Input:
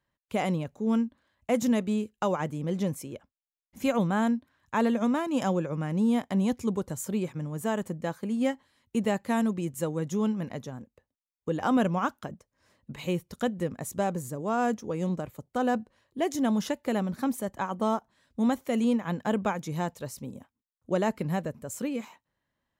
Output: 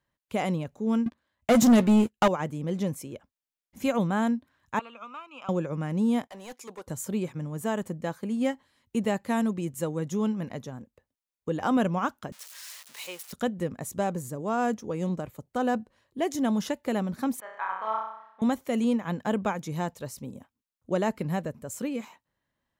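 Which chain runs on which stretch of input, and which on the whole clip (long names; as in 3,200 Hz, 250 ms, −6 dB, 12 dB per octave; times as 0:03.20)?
0:01.06–0:02.28: leveller curve on the samples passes 3 + double-tracking delay 13 ms −13 dB
0:04.79–0:05.49: pair of resonant band-passes 1,800 Hz, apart 1 octave + multiband upward and downward compressor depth 70%
0:06.27–0:06.87: high-pass filter 640 Hz + hard clipping −36 dBFS + multiband upward and downward expander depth 70%
0:12.32–0:13.33: spike at every zero crossing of −29 dBFS + high-pass filter 840 Hz + high-shelf EQ 10,000 Hz −11 dB
0:17.40–0:18.42: flat-topped band-pass 1,500 Hz, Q 0.96 + flutter between parallel walls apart 5.5 metres, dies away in 0.74 s
whole clip: no processing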